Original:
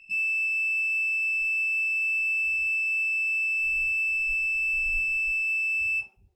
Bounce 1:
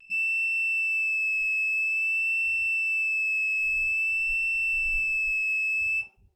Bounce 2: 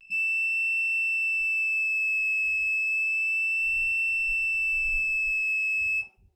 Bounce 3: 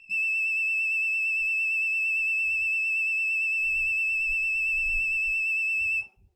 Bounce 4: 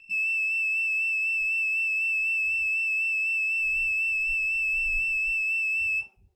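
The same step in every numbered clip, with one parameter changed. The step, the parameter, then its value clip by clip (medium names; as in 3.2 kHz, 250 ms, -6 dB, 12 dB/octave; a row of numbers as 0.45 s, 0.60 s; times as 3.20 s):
vibrato, rate: 0.5 Hz, 0.31 Hz, 8.8 Hz, 4 Hz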